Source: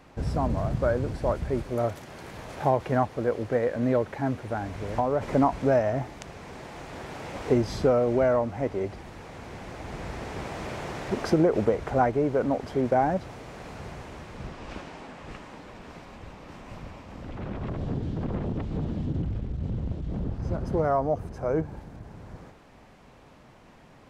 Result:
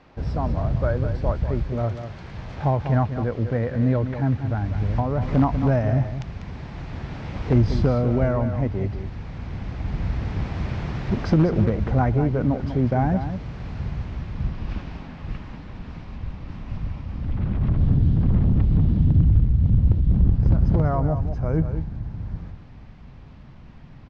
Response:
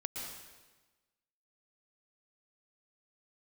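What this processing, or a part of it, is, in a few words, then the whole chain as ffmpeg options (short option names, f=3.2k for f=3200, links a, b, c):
synthesiser wavefolder: -af "asubboost=boost=6:cutoff=180,aeval=exprs='0.335*(abs(mod(val(0)/0.335+3,4)-2)-1)':c=same,lowpass=f=5.3k:w=0.5412,lowpass=f=5.3k:w=1.3066,aecho=1:1:195:0.335"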